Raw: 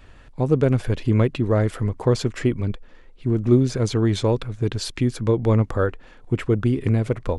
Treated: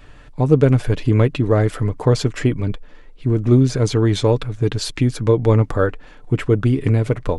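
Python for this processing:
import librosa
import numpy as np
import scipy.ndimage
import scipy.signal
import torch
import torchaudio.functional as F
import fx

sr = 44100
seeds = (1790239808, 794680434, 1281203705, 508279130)

y = x + 0.34 * np.pad(x, (int(6.8 * sr / 1000.0), 0))[:len(x)]
y = F.gain(torch.from_numpy(y), 3.5).numpy()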